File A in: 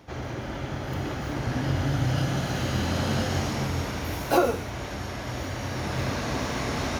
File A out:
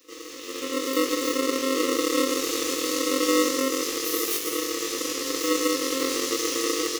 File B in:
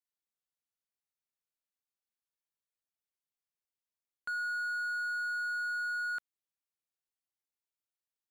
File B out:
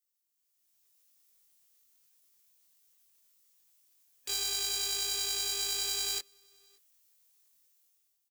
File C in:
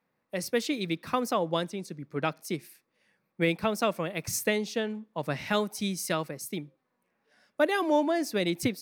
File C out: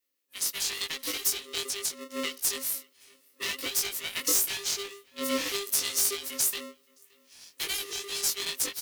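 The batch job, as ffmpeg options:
-filter_complex "[0:a]equalizer=f=630:t=o:w=0.67:g=-12,equalizer=f=1.6k:t=o:w=0.67:g=-5,equalizer=f=6.3k:t=o:w=0.67:g=4,dynaudnorm=f=280:g=5:m=15dB,flanger=delay=1.7:depth=8.1:regen=22:speed=0.45:shape=triangular,aeval=exprs='0.562*(cos(1*acos(clip(val(0)/0.562,-1,1)))-cos(1*PI/2))+0.02*(cos(6*acos(clip(val(0)/0.562,-1,1)))-cos(6*PI/2))':c=same,asoftclip=type=tanh:threshold=-18.5dB,asplit=2[a][b];[b]adelay=20,volume=-2dB[c];[a][c]amix=inputs=2:normalize=0,afftfilt=real='re*(1-between(b*sr/4096,150,2100))':imag='im*(1-between(b*sr/4096,150,2100))':win_size=4096:overlap=0.75,acrossover=split=150[d][e];[e]acompressor=threshold=-35dB:ratio=3[f];[d][f]amix=inputs=2:normalize=0,aemphasis=mode=production:type=50kf,asplit=2[g][h];[h]adelay=571.4,volume=-24dB,highshelf=f=4k:g=-12.9[i];[g][i]amix=inputs=2:normalize=0,aeval=exprs='val(0)*sgn(sin(2*PI*400*n/s))':c=same"

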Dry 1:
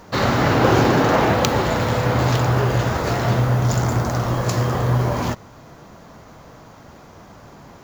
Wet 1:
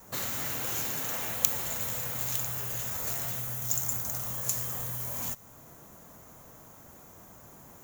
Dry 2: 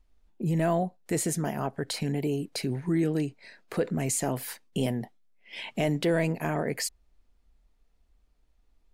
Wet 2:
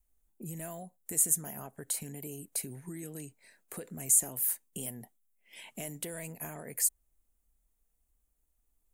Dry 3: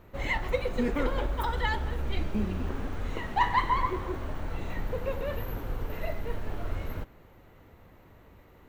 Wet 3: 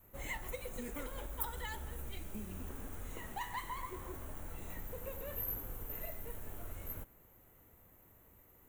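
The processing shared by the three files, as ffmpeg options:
-filter_complex "[0:a]adynamicequalizer=threshold=0.0112:dfrequency=340:dqfactor=2.7:tfrequency=340:tqfactor=2.7:attack=5:release=100:ratio=0.375:range=3.5:mode=cutabove:tftype=bell,acrossover=split=2100[a][b];[a]acompressor=threshold=-28dB:ratio=10[c];[b]aexciter=amount=10.9:drive=3.4:freq=6.9k[d];[c][d]amix=inputs=2:normalize=0,volume=-11dB"

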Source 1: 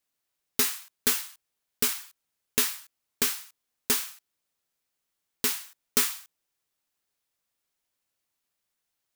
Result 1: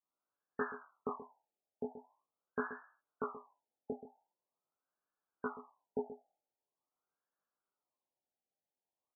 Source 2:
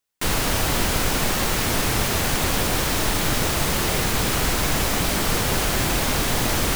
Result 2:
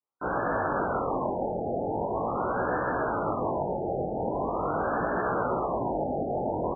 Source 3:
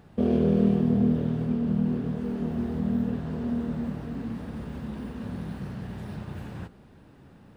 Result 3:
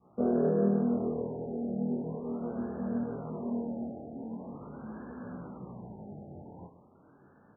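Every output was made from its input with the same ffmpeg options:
-filter_complex "[0:a]highpass=f=410:p=1,adynamicequalizer=threshold=0.00631:dfrequency=570:dqfactor=1.1:tfrequency=570:tqfactor=1.1:attack=5:release=100:ratio=0.375:range=2:mode=boostabove:tftype=bell,flanger=delay=16:depth=6.9:speed=0.37,asplit=2[a][b];[b]aecho=0:1:129:0.237[c];[a][c]amix=inputs=2:normalize=0,afftfilt=real='re*lt(b*sr/1024,850*pow(1800/850,0.5+0.5*sin(2*PI*0.44*pts/sr)))':imag='im*lt(b*sr/1024,850*pow(1800/850,0.5+0.5*sin(2*PI*0.44*pts/sr)))':win_size=1024:overlap=0.75,volume=1.5dB"

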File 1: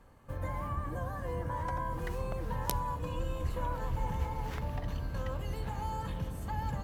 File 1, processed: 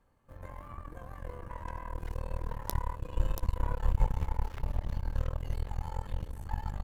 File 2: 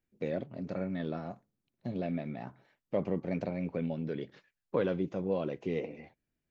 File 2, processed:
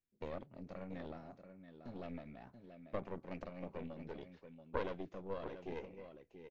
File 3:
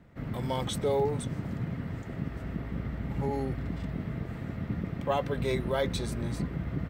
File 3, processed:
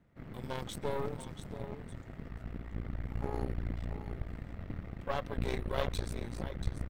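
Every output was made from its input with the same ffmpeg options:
-af "aecho=1:1:683:0.355,asubboost=boost=6.5:cutoff=57,aeval=exprs='0.447*(cos(1*acos(clip(val(0)/0.447,-1,1)))-cos(1*PI/2))+0.02*(cos(3*acos(clip(val(0)/0.447,-1,1)))-cos(3*PI/2))+0.0251*(cos(6*acos(clip(val(0)/0.447,-1,1)))-cos(6*PI/2))+0.0355*(cos(7*acos(clip(val(0)/0.447,-1,1)))-cos(7*PI/2))+0.0501*(cos(8*acos(clip(val(0)/0.447,-1,1)))-cos(8*PI/2))':c=same,volume=-1dB"

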